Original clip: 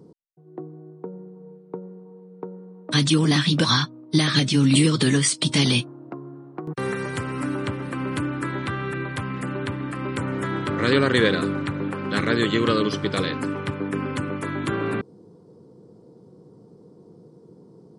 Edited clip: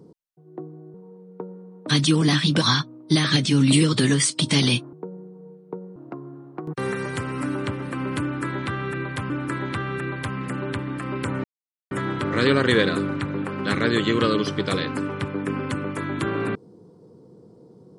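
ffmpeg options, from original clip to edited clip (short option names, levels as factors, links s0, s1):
-filter_complex "[0:a]asplit=6[s0][s1][s2][s3][s4][s5];[s0]atrim=end=0.942[s6];[s1]atrim=start=1.968:end=5.962[s7];[s2]atrim=start=0.938:end=1.972[s8];[s3]atrim=start=5.958:end=9.302[s9];[s4]atrim=start=8.228:end=10.37,asetpts=PTS-STARTPTS,afade=t=out:st=2.138:d=0.004:c=hsin,apad=pad_dur=0.47[s10];[s5]atrim=start=10.37,asetpts=PTS-STARTPTS,afade=t=in:d=0.004:c=hsin[s11];[s6][s7]acrossfade=d=0.004:c1=hsin:c2=hsin[s12];[s12][s8]acrossfade=d=0.004:c1=hsin:c2=hsin[s13];[s13][s9]acrossfade=d=0.004:c1=hsin:c2=hsin[s14];[s10][s11]concat=n=2:v=0:a=1[s15];[s14][s15]acrossfade=d=0.004:c1=hsin:c2=hsin"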